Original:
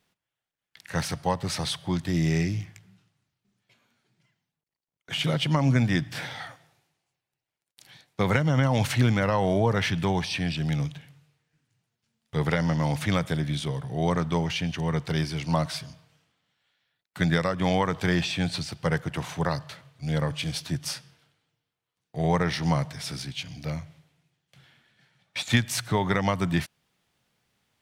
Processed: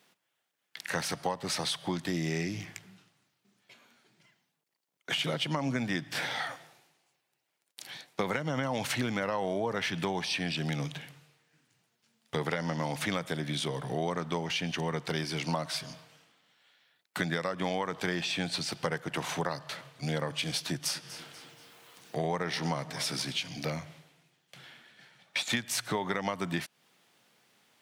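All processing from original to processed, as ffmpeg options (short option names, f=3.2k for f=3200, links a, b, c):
-filter_complex "[0:a]asettb=1/sr,asplit=3[a][b][c];[a]atrim=end=20.684[d];[b]atrim=start=20.68:end=23.49,asetpts=PTS-STARTPTS,afade=t=in:d=0.004:c=qsin,afade=t=out:st=2.806:d=0.004:c=qsin,acompressor=mode=upward:threshold=-42dB:ratio=2.5:attack=3.2:release=140:knee=2.83:detection=peak,aecho=1:1:241|482|723:0.0944|0.0378|0.0151,atrim=end_sample=123921[e];[c]atrim=start=23.486[f];[d][e]acrossfade=d=0.004:c1=hsin:c2=qsin[g];[g][f]acrossfade=d=0.004:c1=qsin:c2=hsin,highpass=230,acompressor=threshold=-38dB:ratio=4,volume=7.5dB"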